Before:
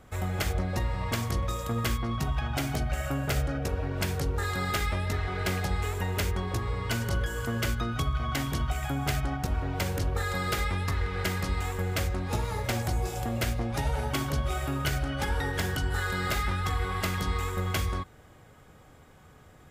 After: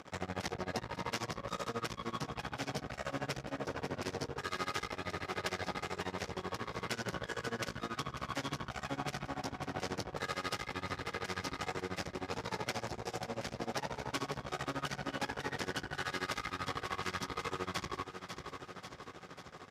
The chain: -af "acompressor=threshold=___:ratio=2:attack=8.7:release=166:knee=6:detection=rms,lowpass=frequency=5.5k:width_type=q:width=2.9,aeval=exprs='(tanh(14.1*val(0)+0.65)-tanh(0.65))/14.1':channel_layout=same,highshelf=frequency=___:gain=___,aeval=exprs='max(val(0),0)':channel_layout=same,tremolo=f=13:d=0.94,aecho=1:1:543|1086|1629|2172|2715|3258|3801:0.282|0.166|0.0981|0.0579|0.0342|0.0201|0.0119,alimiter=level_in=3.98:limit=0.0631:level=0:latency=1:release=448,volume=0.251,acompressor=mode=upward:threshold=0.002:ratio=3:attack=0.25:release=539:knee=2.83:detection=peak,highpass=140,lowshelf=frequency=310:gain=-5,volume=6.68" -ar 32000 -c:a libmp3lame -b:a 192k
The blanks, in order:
0.0282, 2.9k, -9